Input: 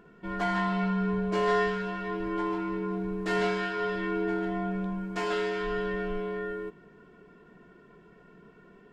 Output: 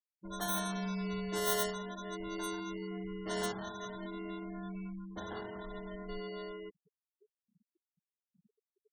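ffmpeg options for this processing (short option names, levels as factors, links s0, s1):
-filter_complex "[0:a]asettb=1/sr,asplit=3[s0][s1][s2];[s0]atrim=end=3.524[s3];[s1]atrim=start=3.52:end=6.09,asetpts=PTS-STARTPTS,afade=t=in:d=0.004:c=qsin,afade=t=out:st=2.566:d=0.004:c=qsin,equalizer=f=125:t=o:w=1:g=-6,equalizer=f=250:t=o:w=1:g=4,equalizer=f=500:t=o:w=1:g=-10,equalizer=f=1000:t=o:w=1:g=-6,equalizer=f=4000:t=o:w=1:g=8[s4];[s2]atrim=start=6.086[s5];[s3][s4]acrossfade=d=0.004:c1=hsin:c2=qsin[s6];[s6][s5]acrossfade=d=0.004:c1=qsin:c2=hsin,acrusher=samples=18:mix=1:aa=0.000001,afftfilt=real='re*gte(hypot(re,im),0.02)':imag='im*gte(hypot(re,im),0.02)':win_size=1024:overlap=0.75,aemphasis=mode=production:type=50fm,volume=0.376"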